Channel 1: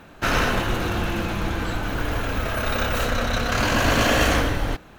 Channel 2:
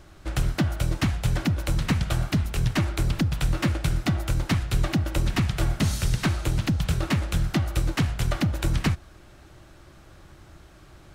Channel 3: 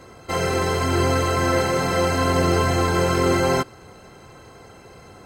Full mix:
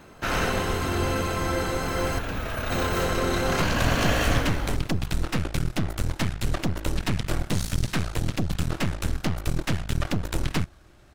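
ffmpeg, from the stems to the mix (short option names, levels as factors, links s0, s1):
-filter_complex "[0:a]volume=0.531[s0];[1:a]aeval=exprs='0.237*(cos(1*acos(clip(val(0)/0.237,-1,1)))-cos(1*PI/2))+0.0841*(cos(2*acos(clip(val(0)/0.237,-1,1)))-cos(2*PI/2))+0.0473*(cos(6*acos(clip(val(0)/0.237,-1,1)))-cos(6*PI/2))':c=same,adelay=1700,volume=0.596,afade=t=in:st=3.39:d=0.28:silence=0.223872[s1];[2:a]highshelf=f=12000:g=10.5,volume=0.398,asplit=3[s2][s3][s4];[s2]atrim=end=2.19,asetpts=PTS-STARTPTS,afade=t=out:st=2.186:d=0.004:c=hsin[s5];[s3]atrim=start=2.19:end=2.7,asetpts=PTS-STARTPTS,volume=0[s6];[s4]atrim=start=2.7,asetpts=PTS-STARTPTS,afade=t=in:d=0.004:c=hsin[s7];[s5][s6][s7]concat=n=3:v=0:a=1[s8];[s0][s1][s8]amix=inputs=3:normalize=0"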